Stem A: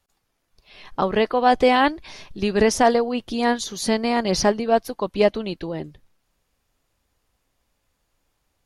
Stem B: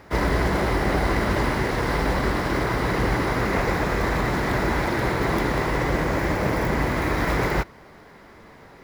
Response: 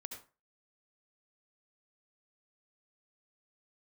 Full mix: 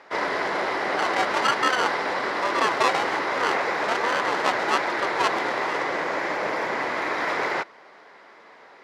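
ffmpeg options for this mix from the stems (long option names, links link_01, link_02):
-filter_complex "[0:a]acrusher=samples=29:mix=1:aa=0.000001,aeval=exprs='val(0)*sin(2*PI*550*n/s+550*0.45/1.2*sin(2*PI*1.2*n/s))':channel_layout=same,volume=-1.5dB[link_01];[1:a]volume=1dB[link_02];[link_01][link_02]amix=inputs=2:normalize=0,highpass=520,lowpass=5300"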